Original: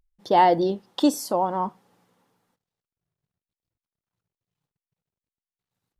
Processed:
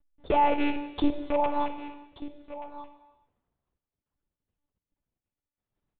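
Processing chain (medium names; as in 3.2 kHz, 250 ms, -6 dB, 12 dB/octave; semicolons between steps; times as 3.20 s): rattle on loud lows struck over -32 dBFS, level -16 dBFS; treble shelf 2.4 kHz -9 dB; band-stop 650 Hz, Q 12; de-hum 194.9 Hz, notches 33; compression 2:1, threshold -26 dBFS, peak gain reduction 7 dB; in parallel at -10 dB: decimation with a swept rate 16×, swing 100% 0.53 Hz; on the sum: wow and flutter 25 cents; delay 1186 ms -14.5 dB; monotone LPC vocoder at 8 kHz 290 Hz; gated-style reverb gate 460 ms falling, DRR 9 dB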